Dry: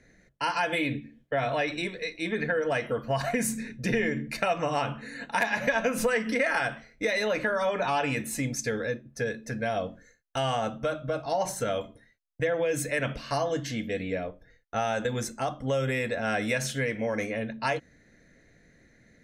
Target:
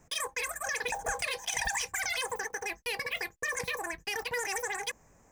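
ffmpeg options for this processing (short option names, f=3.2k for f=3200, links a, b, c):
-af "acrusher=bits=5:mode=log:mix=0:aa=0.000001,asetrate=159642,aresample=44100,lowshelf=f=320:g=10,volume=-6dB"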